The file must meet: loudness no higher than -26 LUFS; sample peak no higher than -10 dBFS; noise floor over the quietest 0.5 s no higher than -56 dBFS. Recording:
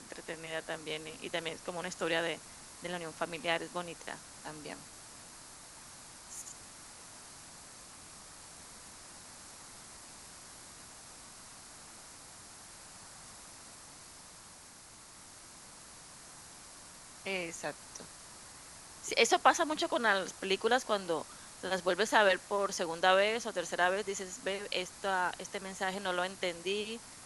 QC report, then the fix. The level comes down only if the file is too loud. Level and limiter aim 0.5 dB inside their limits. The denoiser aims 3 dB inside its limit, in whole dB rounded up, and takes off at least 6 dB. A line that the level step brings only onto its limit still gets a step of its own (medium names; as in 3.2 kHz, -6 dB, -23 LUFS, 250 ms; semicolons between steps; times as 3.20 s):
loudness -33.5 LUFS: pass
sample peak -10.5 dBFS: pass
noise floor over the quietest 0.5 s -54 dBFS: fail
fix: noise reduction 6 dB, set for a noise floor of -54 dBFS